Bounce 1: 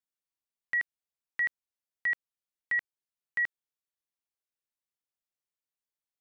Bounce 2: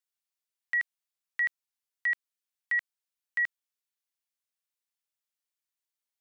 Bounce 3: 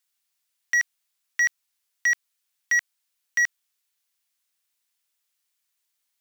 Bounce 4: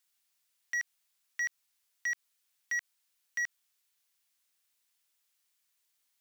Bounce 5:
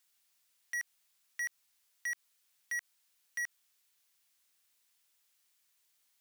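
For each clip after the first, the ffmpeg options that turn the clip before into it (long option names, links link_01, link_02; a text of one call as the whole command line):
ffmpeg -i in.wav -af "highpass=frequency=1500:poles=1,volume=3dB" out.wav
ffmpeg -i in.wav -af "tiltshelf=frequency=770:gain=-6,acrusher=bits=6:mode=log:mix=0:aa=0.000001,aeval=exprs='0.133*sin(PI/2*1.41*val(0)/0.133)':channel_layout=same" out.wav
ffmpeg -i in.wav -af "alimiter=level_in=5dB:limit=-24dB:level=0:latency=1:release=64,volume=-5dB" out.wav
ffmpeg -i in.wav -af "asoftclip=type=tanh:threshold=-36.5dB,volume=3dB" out.wav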